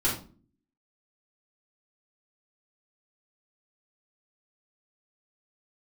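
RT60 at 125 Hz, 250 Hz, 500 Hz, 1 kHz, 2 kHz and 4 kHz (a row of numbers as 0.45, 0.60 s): 0.70, 0.70, 0.45, 0.35, 0.30, 0.30 s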